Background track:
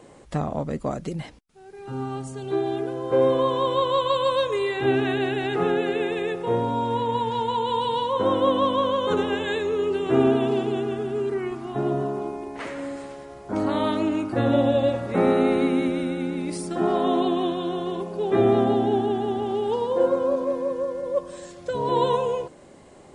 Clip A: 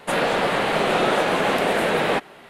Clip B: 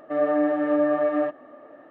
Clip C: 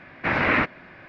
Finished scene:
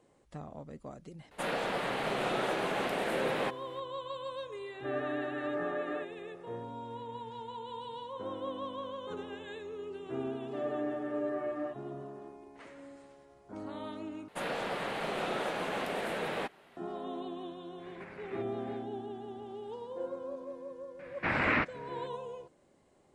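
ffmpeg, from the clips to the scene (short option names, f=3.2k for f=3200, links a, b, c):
-filter_complex "[1:a]asplit=2[a][b];[2:a]asplit=2[c][d];[3:a]asplit=2[e][f];[0:a]volume=-18dB[g];[c]equalizer=f=1.6k:w=1.4:g=11.5[h];[e]acompressor=threshold=-34dB:ratio=16:attack=0.36:release=227:knee=1:detection=rms[i];[g]asplit=2[j][k];[j]atrim=end=14.284[l];[b]atrim=end=2.49,asetpts=PTS-STARTPTS,volume=-14.5dB[m];[k]atrim=start=16.766[n];[a]atrim=end=2.49,asetpts=PTS-STARTPTS,volume=-12.5dB,afade=t=in:d=0.004:c=hsin,afade=t=out:st=2.486:d=0.004:c=hsin,adelay=1310[o];[h]atrim=end=1.9,asetpts=PTS-STARTPTS,volume=-16dB,afade=t=in:d=0.004:c=hsin,afade=t=out:st=1.896:d=0.004:c=hsin,adelay=4740[p];[d]atrim=end=1.9,asetpts=PTS-STARTPTS,volume=-13.5dB,afade=t=in:d=0.004:c=hsin,afade=t=out:st=1.896:d=0.004:c=hsin,adelay=10430[q];[i]atrim=end=1.08,asetpts=PTS-STARTPTS,volume=-9dB,afade=t=in:d=0.1,afade=t=out:st=0.98:d=0.1,adelay=17770[r];[f]atrim=end=1.08,asetpts=PTS-STARTPTS,volume=-7.5dB,afade=t=in:d=0.004:c=hsin,afade=t=out:st=1.076:d=0.004:c=hsin,adelay=20990[s];[l][m]acrossfade=d=0.004:c1=hsin:c2=hsin[t];[t][n]acrossfade=d=0.004:c1=hsin:c2=hsin[u];[u][o][p][q][r][s]amix=inputs=6:normalize=0"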